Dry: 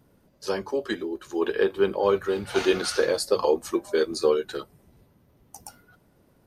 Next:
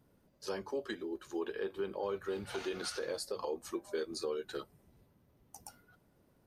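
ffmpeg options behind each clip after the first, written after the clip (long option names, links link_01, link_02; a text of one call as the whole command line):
ffmpeg -i in.wav -af "alimiter=limit=-19.5dB:level=0:latency=1:release=216,volume=-8dB" out.wav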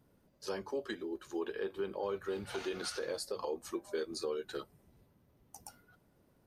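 ffmpeg -i in.wav -af anull out.wav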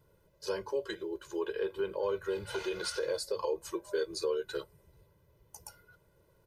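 ffmpeg -i in.wav -af "aecho=1:1:2:0.95" out.wav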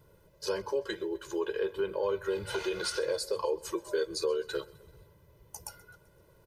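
ffmpeg -i in.wav -filter_complex "[0:a]asplit=2[link_01][link_02];[link_02]acompressor=threshold=-41dB:ratio=6,volume=-0.5dB[link_03];[link_01][link_03]amix=inputs=2:normalize=0,aecho=1:1:129|258|387|516:0.0794|0.0437|0.024|0.0132" out.wav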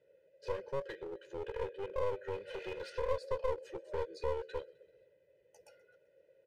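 ffmpeg -i in.wav -filter_complex "[0:a]asplit=3[link_01][link_02][link_03];[link_01]bandpass=frequency=530:width_type=q:width=8,volume=0dB[link_04];[link_02]bandpass=frequency=1840:width_type=q:width=8,volume=-6dB[link_05];[link_03]bandpass=frequency=2480:width_type=q:width=8,volume=-9dB[link_06];[link_04][link_05][link_06]amix=inputs=3:normalize=0,aeval=exprs='clip(val(0),-1,0.00501)':channel_layout=same,volume=4dB" out.wav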